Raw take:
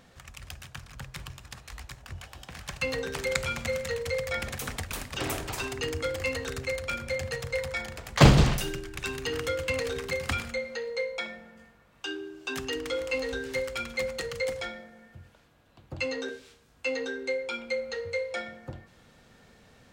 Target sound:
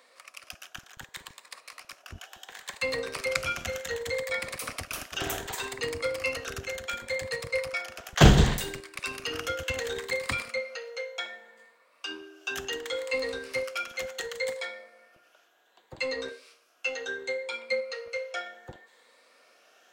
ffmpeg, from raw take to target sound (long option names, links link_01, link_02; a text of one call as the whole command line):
ffmpeg -i in.wav -filter_complex "[0:a]afftfilt=real='re*pow(10,7/40*sin(2*PI*(0.97*log(max(b,1)*sr/1024/100)/log(2)-(0.68)*(pts-256)/sr)))':imag='im*pow(10,7/40*sin(2*PI*(0.97*log(max(b,1)*sr/1024/100)/log(2)-(0.68)*(pts-256)/sr)))':win_size=1024:overlap=0.75,bandreject=frequency=850:width=12,acrossover=split=400|960[link_01][link_02][link_03];[link_01]aeval=exprs='sgn(val(0))*max(abs(val(0))-0.0119,0)':channel_layout=same[link_04];[link_04][link_02][link_03]amix=inputs=3:normalize=0" out.wav